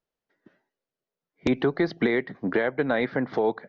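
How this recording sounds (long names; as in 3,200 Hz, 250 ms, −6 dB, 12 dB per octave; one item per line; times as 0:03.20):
background noise floor −91 dBFS
spectral slope −5.0 dB per octave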